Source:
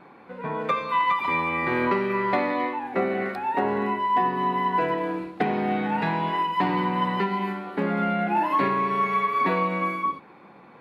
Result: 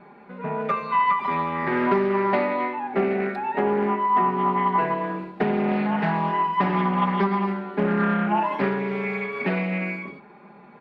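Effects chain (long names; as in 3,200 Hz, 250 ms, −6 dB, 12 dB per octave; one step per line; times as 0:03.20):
low-pass filter 2,400 Hz 6 dB per octave
notch filter 1,100 Hz, Q 10
comb filter 4.9 ms, depth 75%
highs frequency-modulated by the lows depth 0.25 ms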